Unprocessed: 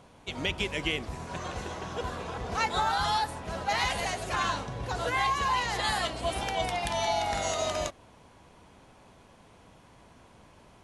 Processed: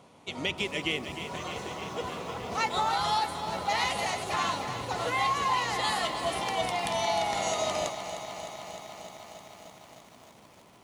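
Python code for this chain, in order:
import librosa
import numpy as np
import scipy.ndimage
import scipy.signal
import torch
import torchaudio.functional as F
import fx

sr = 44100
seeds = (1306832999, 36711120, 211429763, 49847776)

y = scipy.signal.sosfilt(scipy.signal.butter(2, 130.0, 'highpass', fs=sr, output='sos'), x)
y = fx.notch(y, sr, hz=1600.0, q=6.8)
y = fx.echo_crushed(y, sr, ms=306, feedback_pct=80, bits=9, wet_db=-10.5)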